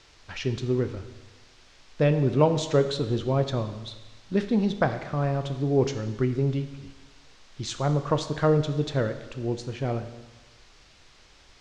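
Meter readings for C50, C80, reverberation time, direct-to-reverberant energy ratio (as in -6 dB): 11.0 dB, 12.5 dB, 1.2 s, 8.5 dB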